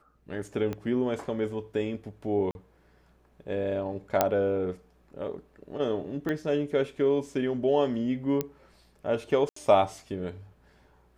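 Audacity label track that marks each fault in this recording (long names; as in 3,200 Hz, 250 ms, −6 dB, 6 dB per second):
0.730000	0.730000	click −21 dBFS
2.510000	2.550000	drop-out 41 ms
4.210000	4.210000	click −7 dBFS
6.290000	6.290000	click −19 dBFS
8.410000	8.410000	click −14 dBFS
9.490000	9.560000	drop-out 74 ms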